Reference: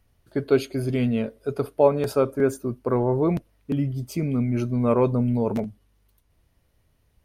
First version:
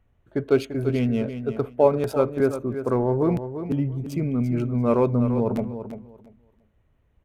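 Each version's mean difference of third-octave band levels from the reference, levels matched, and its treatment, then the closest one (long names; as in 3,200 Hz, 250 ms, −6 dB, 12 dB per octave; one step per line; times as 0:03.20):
3.0 dB: adaptive Wiener filter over 9 samples
repeating echo 342 ms, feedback 19%, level −10 dB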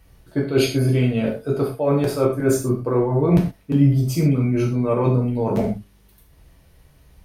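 5.0 dB: reversed playback
downward compressor 10 to 1, threshold −28 dBFS, peak gain reduction 16.5 dB
reversed playback
reverb whose tail is shaped and stops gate 150 ms falling, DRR −2.5 dB
level +8.5 dB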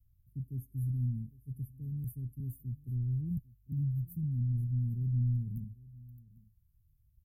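14.0 dB: inverse Chebyshev band-stop filter 580–4,300 Hz, stop band 70 dB
on a send: single-tap delay 800 ms −21 dB
on the sum: level −2.5 dB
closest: first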